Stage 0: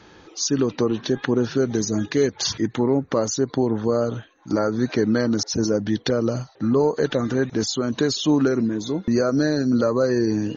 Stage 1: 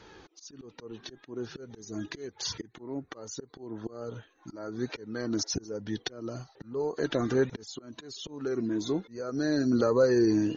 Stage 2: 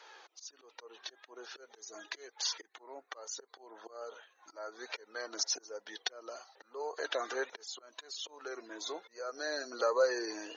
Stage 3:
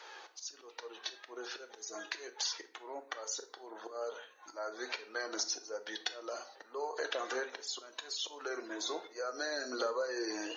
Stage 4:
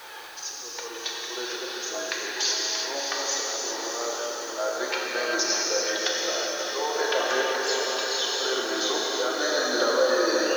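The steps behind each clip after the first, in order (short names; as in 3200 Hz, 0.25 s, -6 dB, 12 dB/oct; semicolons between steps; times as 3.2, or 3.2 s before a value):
auto swell 0.611 s; flange 1.2 Hz, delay 2 ms, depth 1.2 ms, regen +47%
HPF 570 Hz 24 dB/oct
compressor 4:1, threshold -38 dBFS, peak gain reduction 12.5 dB; on a send at -8 dB: reverb RT60 0.45 s, pre-delay 3 ms; on the sum: gain +4 dB
diffused feedback echo 0.631 s, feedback 57%, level -5 dB; non-linear reverb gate 0.42 s flat, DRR -2.5 dB; requantised 10-bit, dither triangular; gain +8 dB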